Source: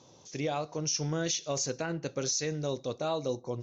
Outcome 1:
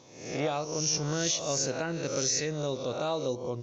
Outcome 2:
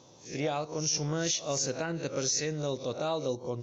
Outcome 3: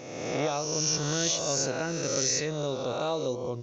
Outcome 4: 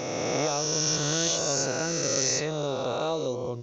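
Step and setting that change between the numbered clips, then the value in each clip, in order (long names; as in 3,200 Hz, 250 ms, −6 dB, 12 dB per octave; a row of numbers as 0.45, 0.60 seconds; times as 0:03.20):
peak hold with a rise ahead of every peak, rising 60 dB in: 0.68, 0.31, 1.41, 3.06 seconds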